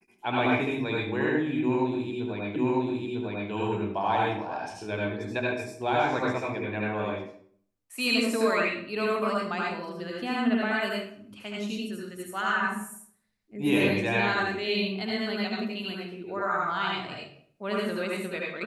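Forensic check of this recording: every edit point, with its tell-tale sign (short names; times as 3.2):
2.56 repeat of the last 0.95 s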